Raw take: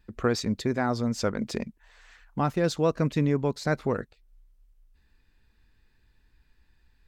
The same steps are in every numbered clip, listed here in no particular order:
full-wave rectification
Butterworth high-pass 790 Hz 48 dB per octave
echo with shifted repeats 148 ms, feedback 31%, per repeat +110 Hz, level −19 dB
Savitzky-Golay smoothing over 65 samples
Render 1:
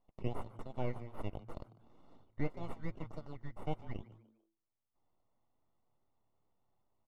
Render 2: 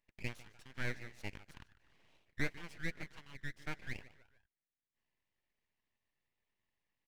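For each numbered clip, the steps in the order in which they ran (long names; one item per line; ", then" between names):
Butterworth high-pass, then full-wave rectification, then Savitzky-Golay smoothing, then echo with shifted repeats
Savitzky-Golay smoothing, then echo with shifted repeats, then Butterworth high-pass, then full-wave rectification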